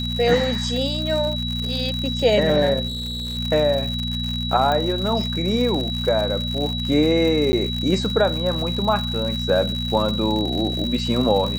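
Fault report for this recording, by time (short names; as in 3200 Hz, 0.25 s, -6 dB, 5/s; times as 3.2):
crackle 140/s -26 dBFS
hum 60 Hz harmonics 4 -27 dBFS
tone 3900 Hz -27 dBFS
2.87–3.38 clipped -25 dBFS
4.72 pop -11 dBFS
7.52–7.53 gap 10 ms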